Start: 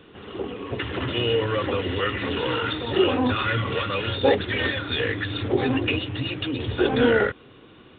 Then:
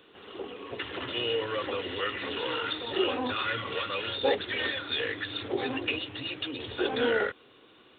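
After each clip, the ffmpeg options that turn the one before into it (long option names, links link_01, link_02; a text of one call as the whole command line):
ffmpeg -i in.wav -af "bass=frequency=250:gain=-12,treble=frequency=4000:gain=9,volume=-6dB" out.wav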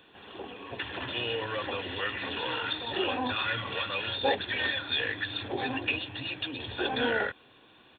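ffmpeg -i in.wav -af "aecho=1:1:1.2:0.44" out.wav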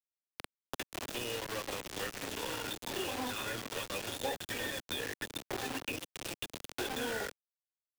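ffmpeg -i in.wav -filter_complex "[0:a]acrusher=bits=4:mix=0:aa=0.000001,acrossover=split=200|610[link_01][link_02][link_03];[link_01]acompressor=threshold=-55dB:ratio=4[link_04];[link_02]acompressor=threshold=-45dB:ratio=4[link_05];[link_03]acompressor=threshold=-43dB:ratio=4[link_06];[link_04][link_05][link_06]amix=inputs=3:normalize=0,volume=3.5dB" out.wav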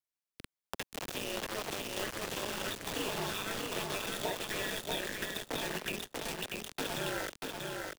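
ffmpeg -i in.wav -af "aeval=exprs='val(0)*sin(2*PI*99*n/s)':channel_layout=same,aecho=1:1:638|1276|1914|2552:0.668|0.174|0.0452|0.0117,volume=3dB" out.wav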